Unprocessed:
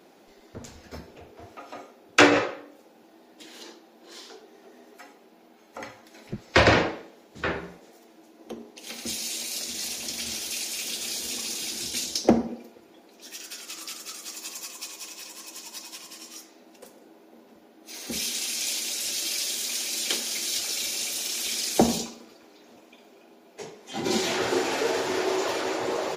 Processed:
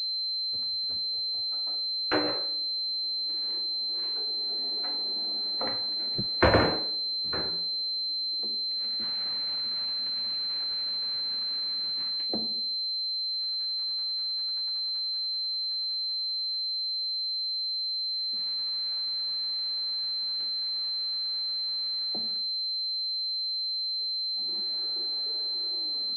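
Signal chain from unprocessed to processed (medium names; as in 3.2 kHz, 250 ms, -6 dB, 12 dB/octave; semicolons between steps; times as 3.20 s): tape stop on the ending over 0.89 s; Doppler pass-by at 5.24 s, 11 m/s, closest 4.9 m; class-D stage that switches slowly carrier 4.1 kHz; trim +7 dB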